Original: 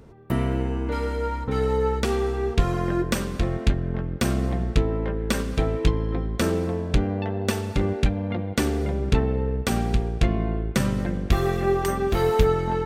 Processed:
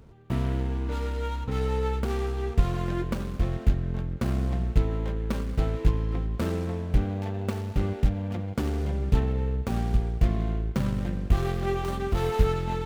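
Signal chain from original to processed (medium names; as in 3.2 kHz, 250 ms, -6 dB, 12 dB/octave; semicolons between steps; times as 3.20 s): median filter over 25 samples; peaking EQ 400 Hz -7 dB 2.4 oct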